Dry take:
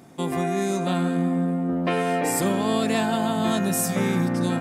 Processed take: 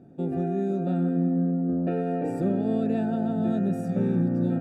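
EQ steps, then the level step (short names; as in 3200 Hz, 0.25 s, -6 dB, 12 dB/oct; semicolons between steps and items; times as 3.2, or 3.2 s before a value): running mean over 42 samples; 0.0 dB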